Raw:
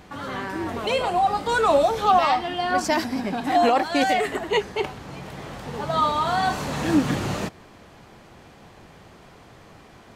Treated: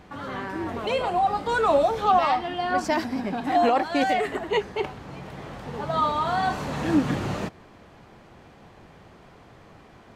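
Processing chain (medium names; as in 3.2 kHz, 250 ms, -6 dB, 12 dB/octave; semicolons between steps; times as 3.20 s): treble shelf 4 kHz -8 dB; trim -1.5 dB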